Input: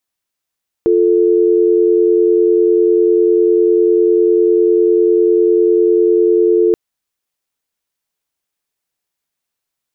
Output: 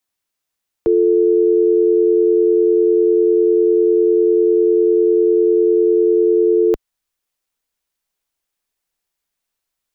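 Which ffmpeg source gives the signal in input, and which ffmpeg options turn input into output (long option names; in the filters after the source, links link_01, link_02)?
-f lavfi -i "aevalsrc='0.282*(sin(2*PI*350*t)+sin(2*PI*440*t))':duration=5.88:sample_rate=44100"
-filter_complex "[0:a]asubboost=boost=3:cutoff=57,acrossover=split=120|330[link_01][link_02][link_03];[link_02]alimiter=limit=-22dB:level=0:latency=1:release=20[link_04];[link_01][link_04][link_03]amix=inputs=3:normalize=0"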